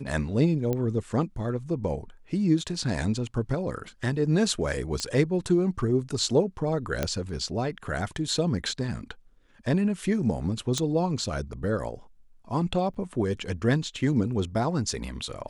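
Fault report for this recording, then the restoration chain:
0.73 pop -16 dBFS
5 pop -16 dBFS
7.03 pop -11 dBFS
10.78 pop -14 dBFS
12.94–12.95 gap 6.4 ms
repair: de-click; interpolate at 12.94, 6.4 ms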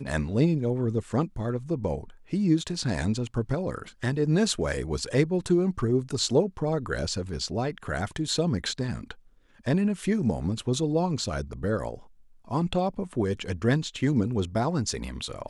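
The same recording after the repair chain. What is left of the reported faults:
none

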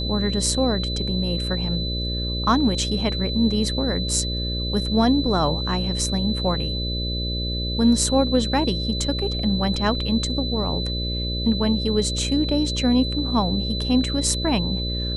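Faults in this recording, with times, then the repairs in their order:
buzz 60 Hz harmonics 10 -27 dBFS
tone 4000 Hz -28 dBFS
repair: notch 4000 Hz, Q 30; de-hum 60 Hz, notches 10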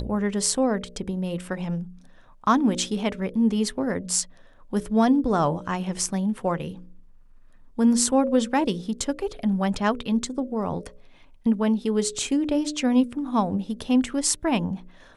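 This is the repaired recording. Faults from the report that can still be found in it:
none

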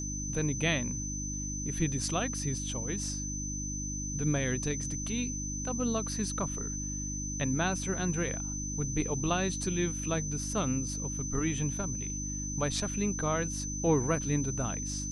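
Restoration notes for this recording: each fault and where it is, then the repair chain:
hum 50 Hz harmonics 6 -38 dBFS
tone 6100 Hz -37 dBFS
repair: de-hum 50 Hz, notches 6; notch 6100 Hz, Q 30

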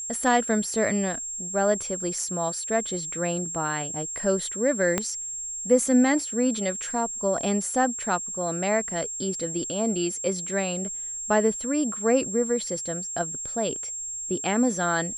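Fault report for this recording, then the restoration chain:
tone 7500 Hz -31 dBFS
4.98 pop -9 dBFS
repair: de-click; notch 7500 Hz, Q 30

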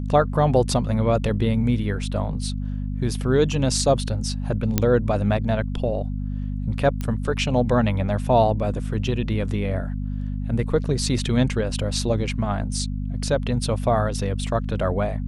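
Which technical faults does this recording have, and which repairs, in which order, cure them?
hum 50 Hz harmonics 5 -27 dBFS
4.78 pop -4 dBFS
7.01 pop -15 dBFS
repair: de-click; de-hum 50 Hz, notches 5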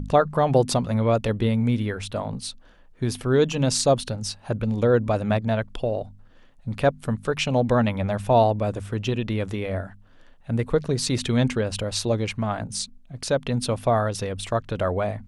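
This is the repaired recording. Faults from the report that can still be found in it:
none

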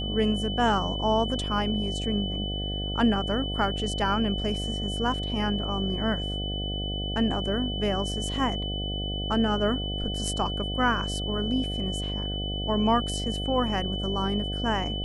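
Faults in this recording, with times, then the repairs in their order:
buzz 50 Hz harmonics 15 -32 dBFS
tone 3000 Hz -33 dBFS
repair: notch 3000 Hz, Q 30; de-hum 50 Hz, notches 15

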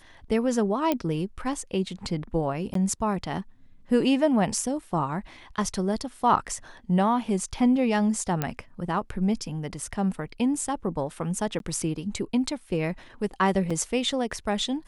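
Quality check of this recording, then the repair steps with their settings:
0.92 pop -11 dBFS
2.74–2.75 gap 13 ms
8.42 pop -11 dBFS
11.59–11.6 gap 12 ms
13.7 gap 4.9 ms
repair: de-click; interpolate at 2.74, 13 ms; interpolate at 11.59, 12 ms; interpolate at 13.7, 4.9 ms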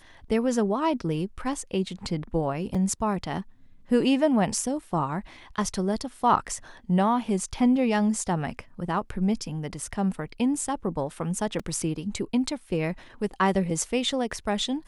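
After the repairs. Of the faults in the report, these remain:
none

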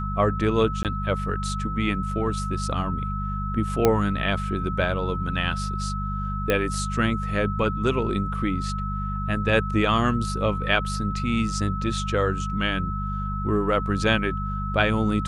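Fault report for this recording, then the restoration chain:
hum 50 Hz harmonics 4 -29 dBFS
tone 1300 Hz -31 dBFS
0.83–0.85 gap 18 ms
3.85 pop -5 dBFS
6.5 pop -9 dBFS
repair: de-click; notch 1300 Hz, Q 30; de-hum 50 Hz, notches 4; interpolate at 0.83, 18 ms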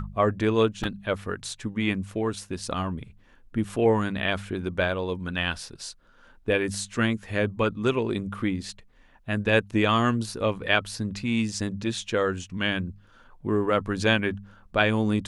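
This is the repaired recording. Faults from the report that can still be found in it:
none

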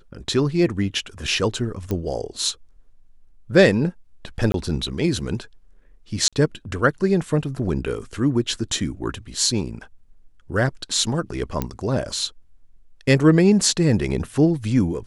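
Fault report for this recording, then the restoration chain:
1.91 pop -13 dBFS
4.52–4.54 gap 22 ms
6.28–6.33 gap 46 ms
11.62 pop -10 dBFS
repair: de-click; interpolate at 4.52, 22 ms; interpolate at 6.28, 46 ms

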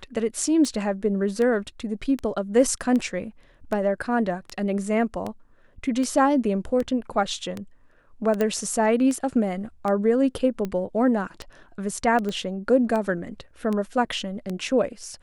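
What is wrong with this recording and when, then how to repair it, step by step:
tick 78 rpm -17 dBFS
8.41 pop -12 dBFS
12.29 pop -18 dBFS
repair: de-click

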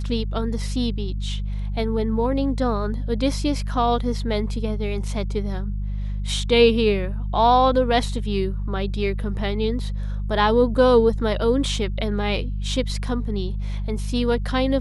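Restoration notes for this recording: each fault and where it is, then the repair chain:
hum 50 Hz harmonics 4 -26 dBFS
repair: de-hum 50 Hz, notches 4

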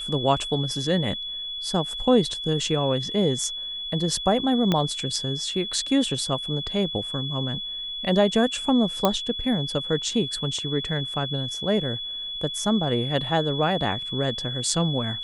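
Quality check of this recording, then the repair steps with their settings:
tone 3400 Hz -30 dBFS
4.72 pop -9 dBFS
9.05 pop -6 dBFS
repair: de-click; notch 3400 Hz, Q 30

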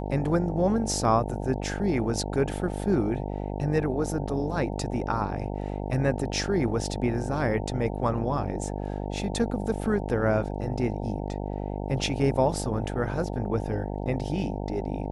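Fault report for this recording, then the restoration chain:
buzz 50 Hz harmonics 18 -32 dBFS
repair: de-hum 50 Hz, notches 18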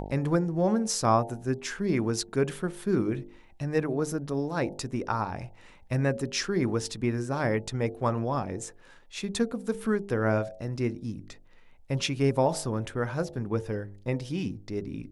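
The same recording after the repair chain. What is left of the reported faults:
none

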